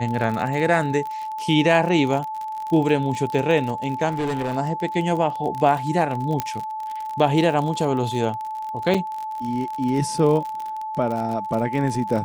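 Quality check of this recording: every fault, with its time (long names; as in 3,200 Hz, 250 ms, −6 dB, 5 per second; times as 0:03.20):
surface crackle 48 per second −27 dBFS
whistle 870 Hz −27 dBFS
0:04.08–0:04.57: clipping −20.5 dBFS
0:06.40: click −8 dBFS
0:08.94–0:08.95: drop-out 5.2 ms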